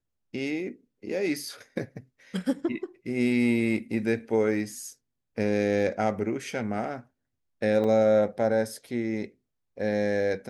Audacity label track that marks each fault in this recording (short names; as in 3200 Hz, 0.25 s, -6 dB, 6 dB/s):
7.840000	7.840000	gap 2.9 ms